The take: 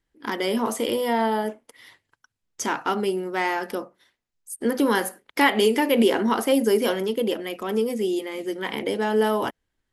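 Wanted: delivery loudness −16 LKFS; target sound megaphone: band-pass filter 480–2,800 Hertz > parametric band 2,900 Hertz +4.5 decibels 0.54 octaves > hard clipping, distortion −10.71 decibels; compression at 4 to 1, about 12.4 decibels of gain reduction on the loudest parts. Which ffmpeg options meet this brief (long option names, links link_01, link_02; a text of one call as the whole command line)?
ffmpeg -i in.wav -af "acompressor=threshold=-30dB:ratio=4,highpass=480,lowpass=2800,equalizer=frequency=2900:width_type=o:width=0.54:gain=4.5,asoftclip=type=hard:threshold=-32.5dB,volume=22dB" out.wav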